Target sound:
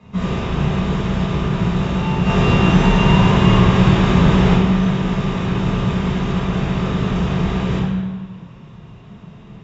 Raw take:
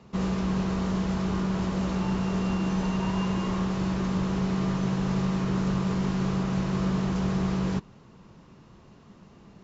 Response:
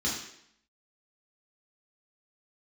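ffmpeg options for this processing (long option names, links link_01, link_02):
-filter_complex "[0:a]asplit=3[link_01][link_02][link_03];[link_01]afade=type=out:start_time=2.24:duration=0.02[link_04];[link_02]acontrast=74,afade=type=in:start_time=2.24:duration=0.02,afade=type=out:start_time=4.53:duration=0.02[link_05];[link_03]afade=type=in:start_time=4.53:duration=0.02[link_06];[link_04][link_05][link_06]amix=inputs=3:normalize=0[link_07];[1:a]atrim=start_sample=2205,asetrate=22932,aresample=44100[link_08];[link_07][link_08]afir=irnorm=-1:irlink=0,volume=-4dB"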